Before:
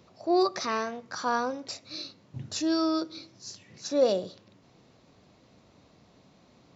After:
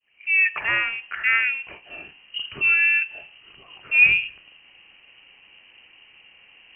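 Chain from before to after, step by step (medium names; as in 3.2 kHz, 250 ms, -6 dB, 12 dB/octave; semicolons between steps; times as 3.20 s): fade-in on the opening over 0.57 s; frequency inversion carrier 3 kHz; trim +7.5 dB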